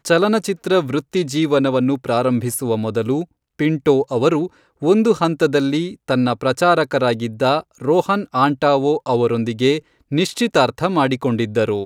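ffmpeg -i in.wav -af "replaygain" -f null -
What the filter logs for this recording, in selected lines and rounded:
track_gain = -2.0 dB
track_peak = 0.573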